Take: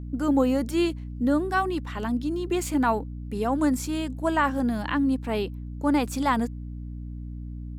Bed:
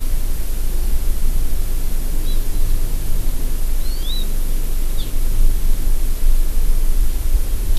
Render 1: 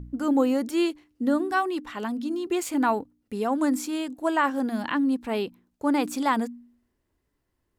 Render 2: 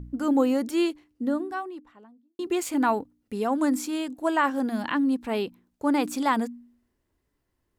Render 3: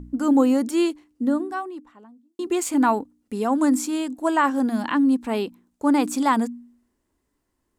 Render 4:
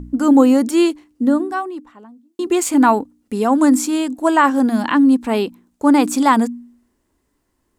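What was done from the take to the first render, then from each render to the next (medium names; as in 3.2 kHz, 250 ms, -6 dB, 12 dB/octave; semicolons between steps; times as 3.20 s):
de-hum 60 Hz, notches 5
0.71–2.39 s: studio fade out
graphic EQ 125/250/1000/8000 Hz -4/+6/+4/+7 dB
trim +6.5 dB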